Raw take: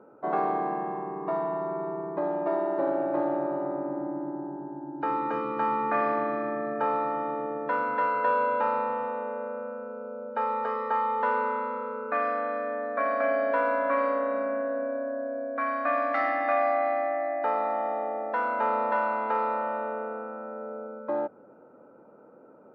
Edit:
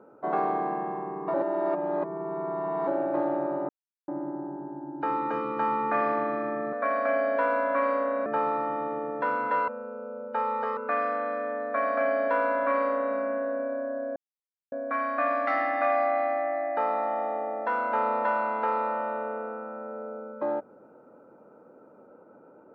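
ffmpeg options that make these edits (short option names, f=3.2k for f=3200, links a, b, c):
-filter_complex "[0:a]asplit=10[a][b][c][d][e][f][g][h][i][j];[a]atrim=end=1.342[k];[b]atrim=start=1.338:end=2.872,asetpts=PTS-STARTPTS,areverse[l];[c]atrim=start=2.868:end=3.69,asetpts=PTS-STARTPTS,afade=t=out:st=0.818:d=0.004:c=hsin[m];[d]atrim=start=3.69:end=4.08,asetpts=PTS-STARTPTS,volume=0[n];[e]atrim=start=4.08:end=6.732,asetpts=PTS-STARTPTS,afade=t=in:d=0.004:c=hsin[o];[f]atrim=start=12.878:end=14.412[p];[g]atrim=start=6.728:end=8.152[q];[h]atrim=start=9.698:end=10.792[r];[i]atrim=start=11.998:end=15.39,asetpts=PTS-STARTPTS,afade=t=out:st=3.388:d=0.004:c=hsin,apad=pad_dur=0.56[s];[j]atrim=start=15.39,asetpts=PTS-STARTPTS,afade=t=in:d=0.004:c=hsin[t];[k][l]acrossfade=d=0.004:c1=hsin:c2=hsin[u];[m][n][o]concat=n=3:v=0:a=1[v];[u][v]acrossfade=d=0.004:c1=hsin:c2=hsin[w];[w][p]acrossfade=d=0.004:c1=hsin:c2=hsin[x];[x][q]acrossfade=d=0.004:c1=hsin:c2=hsin[y];[y][r]acrossfade=d=0.004:c1=hsin:c2=hsin[z];[s][t]concat=n=2:v=0:a=1[aa];[z][aa]acrossfade=d=0.004:c1=hsin:c2=hsin"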